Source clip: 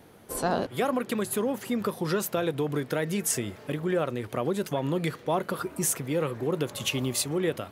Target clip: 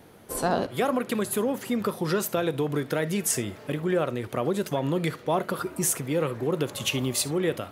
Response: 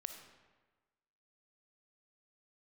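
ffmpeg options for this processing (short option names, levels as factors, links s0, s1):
-filter_complex "[0:a]asplit=2[s0][s1];[1:a]atrim=start_sample=2205,atrim=end_sample=3528[s2];[s1][s2]afir=irnorm=-1:irlink=0,volume=1.41[s3];[s0][s3]amix=inputs=2:normalize=0,volume=0.631"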